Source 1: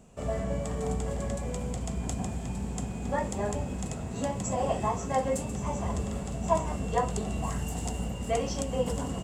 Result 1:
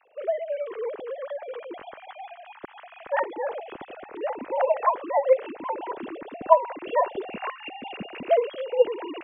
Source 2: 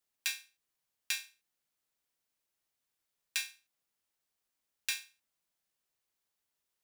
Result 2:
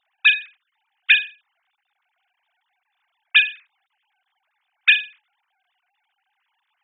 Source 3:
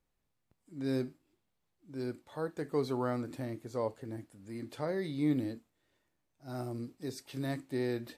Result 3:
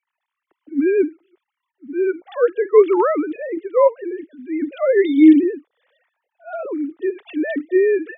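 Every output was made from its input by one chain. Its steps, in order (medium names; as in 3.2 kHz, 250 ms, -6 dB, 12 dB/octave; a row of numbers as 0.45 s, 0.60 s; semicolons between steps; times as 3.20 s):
formants replaced by sine waves; short-mantissa float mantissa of 8-bit; peak normalisation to -1.5 dBFS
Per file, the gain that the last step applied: +3.5 dB, +21.0 dB, +18.5 dB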